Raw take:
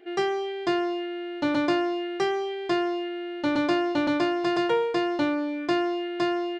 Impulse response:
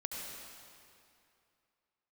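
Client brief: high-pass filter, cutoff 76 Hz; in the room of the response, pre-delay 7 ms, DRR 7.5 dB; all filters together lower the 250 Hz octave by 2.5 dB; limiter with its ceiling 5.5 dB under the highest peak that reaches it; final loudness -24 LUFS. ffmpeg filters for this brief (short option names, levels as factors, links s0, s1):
-filter_complex "[0:a]highpass=76,equalizer=f=250:t=o:g=-4,alimiter=limit=0.112:level=0:latency=1,asplit=2[s0][s1];[1:a]atrim=start_sample=2205,adelay=7[s2];[s1][s2]afir=irnorm=-1:irlink=0,volume=0.376[s3];[s0][s3]amix=inputs=2:normalize=0,volume=1.78"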